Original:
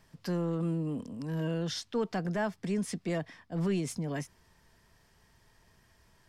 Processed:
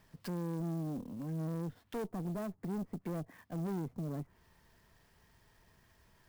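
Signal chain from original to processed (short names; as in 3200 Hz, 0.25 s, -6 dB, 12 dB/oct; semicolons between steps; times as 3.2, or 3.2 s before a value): treble ducked by the level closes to 590 Hz, closed at -31 dBFS; tube stage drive 34 dB, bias 0.45; clock jitter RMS 0.03 ms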